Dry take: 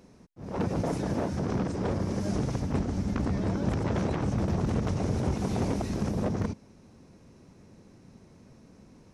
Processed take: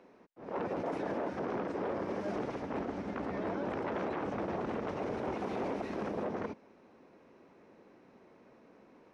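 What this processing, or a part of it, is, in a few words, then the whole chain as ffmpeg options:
DJ mixer with the lows and highs turned down: -filter_complex "[0:a]acrossover=split=290 3100:gain=0.0708 1 0.0794[a][b][c];[a][b][c]amix=inputs=3:normalize=0,alimiter=level_in=5dB:limit=-24dB:level=0:latency=1:release=10,volume=-5dB,volume=1.5dB"

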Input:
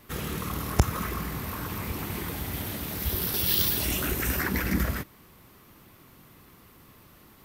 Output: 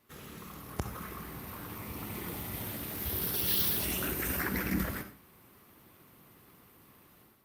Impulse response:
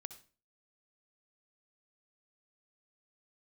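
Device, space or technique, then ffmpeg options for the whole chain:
far-field microphone of a smart speaker: -filter_complex "[0:a]asettb=1/sr,asplit=3[a][b][c];[a]atrim=end=1.754[d];[b]atrim=start=1.75:end=2.63,asetpts=PTS-STARTPTS,afade=t=in:d=0.004:c=qsin,afade=t=out:st=0.876:d=0.004:c=qsin,bandreject=f=1.6k:w=11[e];[c]atrim=start=2.626[f];[d][e]acrossfade=d=0.004:c1=hsin:c2=qsin[g];[g][f]acrossfade=d=0.004:c1=qsin:c2=hsin[h];[1:a]atrim=start_sample=2205[i];[h][i]afir=irnorm=-1:irlink=0,highpass=f=110:p=1,dynaudnorm=f=600:g=3:m=10.5dB,volume=-9dB" -ar 48000 -c:a libopus -b:a 48k

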